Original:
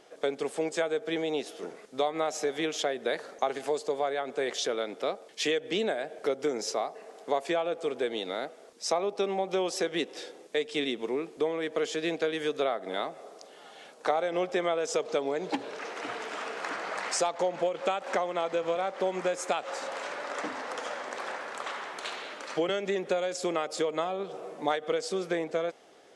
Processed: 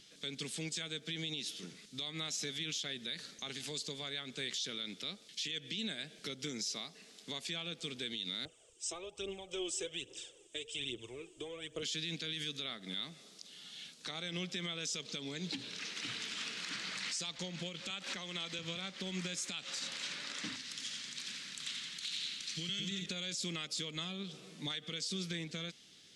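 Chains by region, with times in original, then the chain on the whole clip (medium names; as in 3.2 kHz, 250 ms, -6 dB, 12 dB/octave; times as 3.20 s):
8.45–11.83 s: phaser 1.2 Hz, delay 3.3 ms, feedback 57% + FFT filter 110 Hz 0 dB, 210 Hz -22 dB, 350 Hz -1 dB, 560 Hz +3 dB, 1.3 kHz -5 dB, 2 kHz -13 dB, 3 kHz -3 dB, 4.2 kHz -22 dB, 8.2 kHz +2 dB, 12 kHz -23 dB
17.90–18.59 s: bass shelf 120 Hz -11.5 dB + three bands compressed up and down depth 100%
20.56–23.06 s: peaking EQ 730 Hz -13.5 dB 2.5 oct + two-band feedback delay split 1.5 kHz, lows 219 ms, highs 88 ms, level -5 dB
whole clip: FFT filter 180 Hz 0 dB, 450 Hz -23 dB, 720 Hz -29 dB, 3.8 kHz +4 dB, 9.6 kHz -3 dB; peak limiter -33.5 dBFS; trim +4.5 dB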